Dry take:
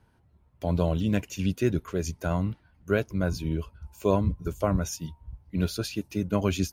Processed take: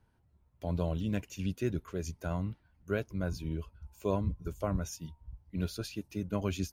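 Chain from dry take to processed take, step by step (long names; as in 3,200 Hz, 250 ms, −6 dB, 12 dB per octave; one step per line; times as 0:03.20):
low-shelf EQ 60 Hz +5.5 dB
level −8 dB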